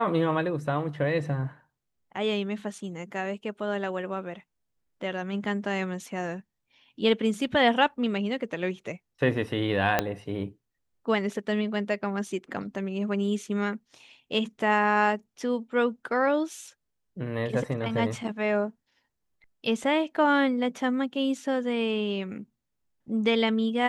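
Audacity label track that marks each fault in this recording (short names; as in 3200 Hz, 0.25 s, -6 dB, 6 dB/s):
9.990000	9.990000	pop -8 dBFS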